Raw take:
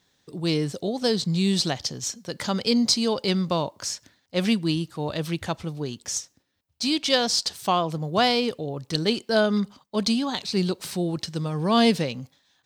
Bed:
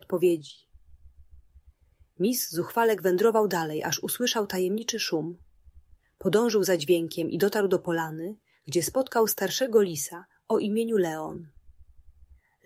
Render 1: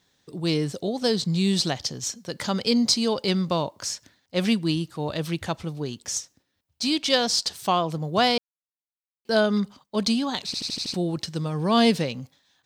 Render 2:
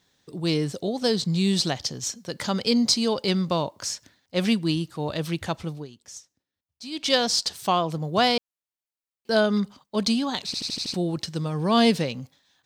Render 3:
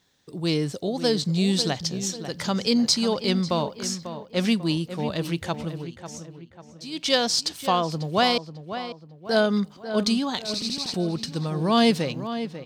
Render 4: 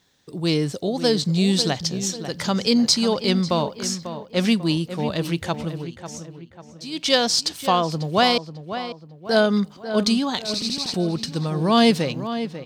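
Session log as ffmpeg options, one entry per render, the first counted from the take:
ffmpeg -i in.wav -filter_complex "[0:a]asplit=9[link_01][link_02][link_03][link_04][link_05][link_06][link_07][link_08][link_09];[link_01]atrim=end=8.38,asetpts=PTS-STARTPTS,afade=type=out:start_time=8.376:duration=0.004:curve=hsin[link_10];[link_02]atrim=start=8.38:end=9.25,asetpts=PTS-STARTPTS,volume=0[link_11];[link_03]atrim=start=9.25:end=10.542,asetpts=PTS-STARTPTS,afade=type=in:duration=0.004:curve=hsin[link_12];[link_04]atrim=start=10.458:end=10.542[link_13];[link_05]atrim=start=10.458:end=10.542[link_14];[link_06]atrim=start=10.458:end=10.542[link_15];[link_07]atrim=start=10.458:end=10.542[link_16];[link_08]atrim=start=10.458:end=10.542[link_17];[link_09]atrim=start=10.938[link_18];[link_10][link_11][link_12]concat=n=3:v=0:a=1[link_19];[link_19][link_13]acrossfade=duration=0.004:curve1=hsin:curve2=hsin[link_20];[link_20][link_14]acrossfade=duration=0.004:curve1=hsin:curve2=hsin[link_21];[link_21][link_15]acrossfade=duration=0.004:curve1=hsin:curve2=hsin[link_22];[link_22][link_16]acrossfade=duration=0.004:curve1=hsin:curve2=hsin[link_23];[link_23][link_17]acrossfade=duration=0.004:curve1=hsin:curve2=hsin[link_24];[link_24][link_18]acrossfade=duration=0.004:curve1=hsin:curve2=hsin" out.wav
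ffmpeg -i in.wav -filter_complex "[0:a]asplit=3[link_01][link_02][link_03];[link_01]atrim=end=5.88,asetpts=PTS-STARTPTS,afade=type=out:start_time=5.72:duration=0.16:silence=0.223872[link_04];[link_02]atrim=start=5.88:end=6.91,asetpts=PTS-STARTPTS,volume=-13dB[link_05];[link_03]atrim=start=6.91,asetpts=PTS-STARTPTS,afade=type=in:duration=0.16:silence=0.223872[link_06];[link_04][link_05][link_06]concat=n=3:v=0:a=1" out.wav
ffmpeg -i in.wav -filter_complex "[0:a]asplit=2[link_01][link_02];[link_02]adelay=544,lowpass=frequency=2500:poles=1,volume=-10.5dB,asplit=2[link_03][link_04];[link_04]adelay=544,lowpass=frequency=2500:poles=1,volume=0.45,asplit=2[link_05][link_06];[link_06]adelay=544,lowpass=frequency=2500:poles=1,volume=0.45,asplit=2[link_07][link_08];[link_08]adelay=544,lowpass=frequency=2500:poles=1,volume=0.45,asplit=2[link_09][link_10];[link_10]adelay=544,lowpass=frequency=2500:poles=1,volume=0.45[link_11];[link_01][link_03][link_05][link_07][link_09][link_11]amix=inputs=6:normalize=0" out.wav
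ffmpeg -i in.wav -af "volume=3dB" out.wav

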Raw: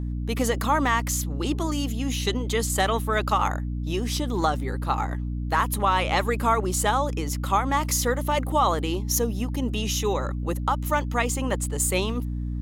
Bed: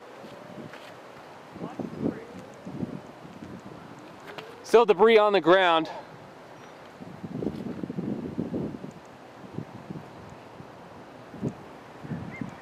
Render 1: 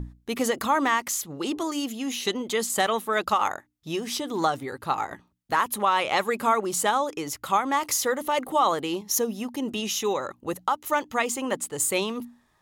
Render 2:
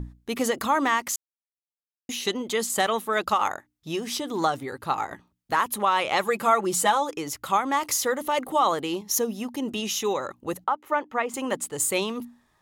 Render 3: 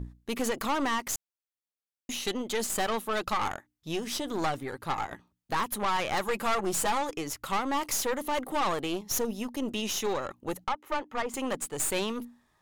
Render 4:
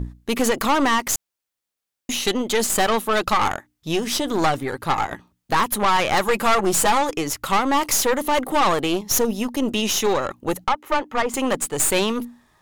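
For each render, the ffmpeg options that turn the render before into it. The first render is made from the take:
ffmpeg -i in.wav -af "bandreject=frequency=60:width_type=h:width=6,bandreject=frequency=120:width_type=h:width=6,bandreject=frequency=180:width_type=h:width=6,bandreject=frequency=240:width_type=h:width=6,bandreject=frequency=300:width_type=h:width=6" out.wav
ffmpeg -i in.wav -filter_complex "[0:a]asettb=1/sr,asplit=3[link_01][link_02][link_03];[link_01]atrim=end=6.234[link_04];[link_02]atrim=start=6.23:end=7.11,asetpts=PTS-STARTPTS,afade=type=in:duration=0.004:curve=qsin,afade=type=out:start_time=0.876:duration=0.004:curve=qsin,aecho=1:1:5.9:0.65,atrim=end_sample=38808[link_05];[link_03]atrim=start=7.106[link_06];[link_04][link_05]acrossfade=duration=0.004:curve1=hsin:curve2=qsin[link_07];[link_07][link_06]acrossfade=duration=0.004:curve1=qsin:curve2=hsin,asettb=1/sr,asplit=3[link_08][link_09][link_10];[link_08]atrim=end=10.644[link_11];[link_09]atrim=start=10.64:end=11.34,asetpts=PTS-STARTPTS,afade=type=in:duration=0.004:curve=qsin,afade=type=out:start_time=0.696:duration=0.004:curve=qsin,acrossover=split=220 2400:gain=0.2 1 0.126[link_12][link_13][link_14];[link_12][link_13][link_14]amix=inputs=3:normalize=0[link_15];[link_10]atrim=start=11.336[link_16];[link_11][link_15]acrossfade=duration=0.004:curve1=hsin:curve2=qsin[link_17];[link_17][link_16]acrossfade=duration=0.004:curve1=qsin:curve2=hsin,asplit=3[link_18][link_19][link_20];[link_18]atrim=end=1.16,asetpts=PTS-STARTPTS,afade=type=out:start_time=1.156:duration=0.004:curve=hsin[link_21];[link_19]atrim=start=1.16:end=2.09,asetpts=PTS-STARTPTS,volume=0[link_22];[link_20]atrim=start=2.09,asetpts=PTS-STARTPTS,afade=type=in:duration=0.004:curve=hsin[link_23];[link_21][link_22][link_23]concat=n=3:v=0:a=1" out.wav
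ffmpeg -i in.wav -af "aeval=exprs='(tanh(15.8*val(0)+0.6)-tanh(0.6))/15.8':channel_layout=same" out.wav
ffmpeg -i in.wav -af "volume=10dB" out.wav

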